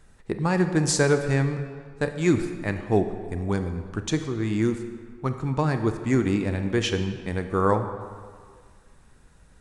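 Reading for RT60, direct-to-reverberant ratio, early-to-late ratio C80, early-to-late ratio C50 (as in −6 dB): 1.8 s, 7.5 dB, 9.5 dB, 8.5 dB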